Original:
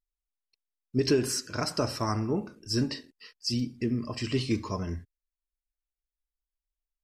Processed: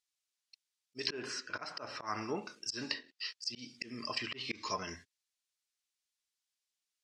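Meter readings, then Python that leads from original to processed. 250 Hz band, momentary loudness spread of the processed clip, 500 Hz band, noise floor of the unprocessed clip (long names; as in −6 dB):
−16.0 dB, 7 LU, −13.0 dB, below −85 dBFS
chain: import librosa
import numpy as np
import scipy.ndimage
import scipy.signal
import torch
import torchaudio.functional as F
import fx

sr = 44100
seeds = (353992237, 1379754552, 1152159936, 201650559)

y = scipy.signal.sosfilt(scipy.signal.butter(2, 5400.0, 'lowpass', fs=sr, output='sos'), x)
y = fx.auto_swell(y, sr, attack_ms=185.0)
y = np.diff(y, prepend=0.0)
y = fx.env_lowpass_down(y, sr, base_hz=1700.0, full_db=-45.0)
y = y * 10.0 ** (17.5 / 20.0)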